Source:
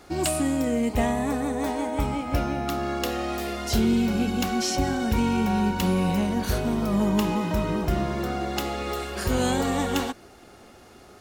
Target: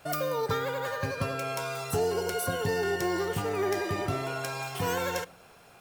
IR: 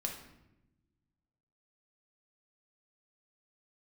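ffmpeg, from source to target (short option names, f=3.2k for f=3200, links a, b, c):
-filter_complex "[0:a]asetrate=85113,aresample=44100,asplit=2[a][b];[1:a]atrim=start_sample=2205,afade=t=out:st=0.4:d=0.01,atrim=end_sample=18081[c];[b][c]afir=irnorm=-1:irlink=0,volume=-18dB[d];[a][d]amix=inputs=2:normalize=0,volume=-6.5dB"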